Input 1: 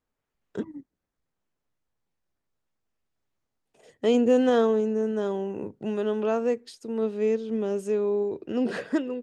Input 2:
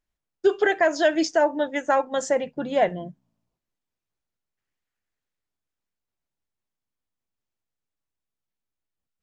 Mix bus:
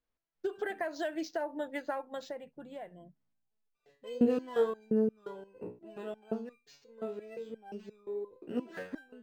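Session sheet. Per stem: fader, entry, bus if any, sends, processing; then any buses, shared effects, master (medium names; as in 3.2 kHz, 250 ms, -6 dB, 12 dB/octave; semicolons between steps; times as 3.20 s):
+1.0 dB, 0.00 s, no send, resonator arpeggio 5.7 Hz 60–1200 Hz
1.89 s -8.5 dB -> 2.62 s -18 dB, 0.00 s, no send, compression 6:1, threshold -23 dBFS, peak gain reduction 9.5 dB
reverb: none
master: decimation joined by straight lines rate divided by 4×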